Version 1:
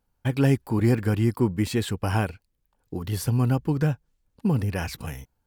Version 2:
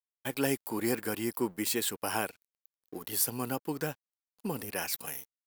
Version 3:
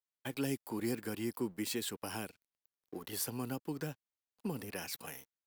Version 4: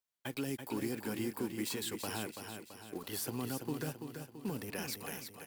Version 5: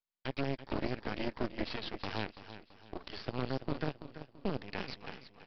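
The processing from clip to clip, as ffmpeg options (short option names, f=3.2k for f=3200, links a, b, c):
-af "highpass=330,aemphasis=mode=production:type=50fm,aeval=exprs='sgn(val(0))*max(abs(val(0))-0.00251,0)':c=same,volume=-3.5dB"
-filter_complex "[0:a]highshelf=f=6.2k:g=-9.5,acrossover=split=330|3000[a][b][c];[b]acompressor=threshold=-41dB:ratio=6[d];[a][d][c]amix=inputs=3:normalize=0,volume=-2dB"
-filter_complex "[0:a]alimiter=level_in=6dB:limit=-24dB:level=0:latency=1:release=36,volume=-6dB,acrusher=bits=5:mode=log:mix=0:aa=0.000001,asplit=2[a][b];[b]aecho=0:1:334|668|1002|1336|1670|2004:0.447|0.223|0.112|0.0558|0.0279|0.014[c];[a][c]amix=inputs=2:normalize=0,volume=1.5dB"
-af "aeval=exprs='0.0562*(cos(1*acos(clip(val(0)/0.0562,-1,1)))-cos(1*PI/2))+0.00501*(cos(7*acos(clip(val(0)/0.0562,-1,1)))-cos(7*PI/2))+0.00141*(cos(8*acos(clip(val(0)/0.0562,-1,1)))-cos(8*PI/2))':c=same,aresample=11025,aeval=exprs='max(val(0),0)':c=same,aresample=44100,volume=7dB"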